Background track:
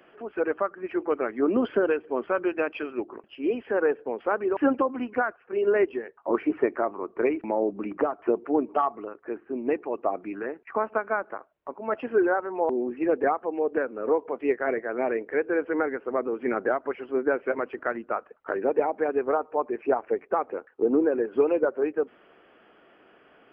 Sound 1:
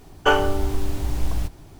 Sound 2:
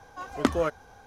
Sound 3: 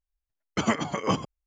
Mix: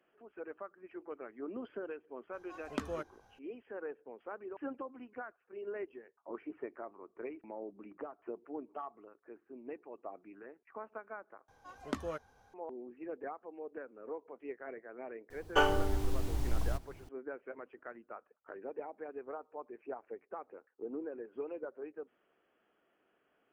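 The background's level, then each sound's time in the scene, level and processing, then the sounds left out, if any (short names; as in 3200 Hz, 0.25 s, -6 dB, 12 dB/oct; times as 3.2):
background track -19 dB
2.33 add 2 -13.5 dB
11.48 replace with 2 -13.5 dB
15.3 add 1 -9.5 dB
not used: 3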